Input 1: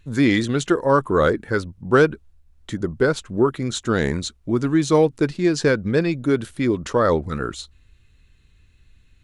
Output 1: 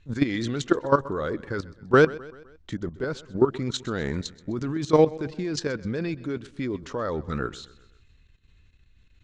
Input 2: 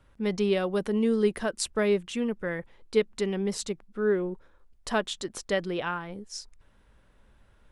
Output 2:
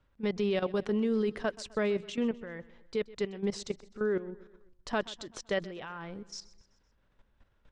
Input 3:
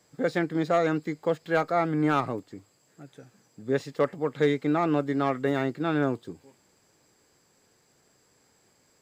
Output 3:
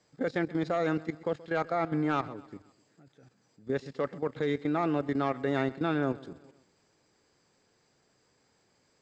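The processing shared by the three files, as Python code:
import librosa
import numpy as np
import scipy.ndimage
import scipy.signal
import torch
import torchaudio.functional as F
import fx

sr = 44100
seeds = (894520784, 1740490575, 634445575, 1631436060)

p1 = scipy.signal.sosfilt(scipy.signal.butter(4, 6700.0, 'lowpass', fs=sr, output='sos'), x)
p2 = fx.level_steps(p1, sr, step_db=14)
y = p2 + fx.echo_feedback(p2, sr, ms=128, feedback_pct=51, wet_db=-20.0, dry=0)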